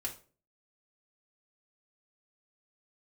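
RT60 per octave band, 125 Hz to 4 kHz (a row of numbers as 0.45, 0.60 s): 0.50, 0.50, 0.45, 0.35, 0.30, 0.30 s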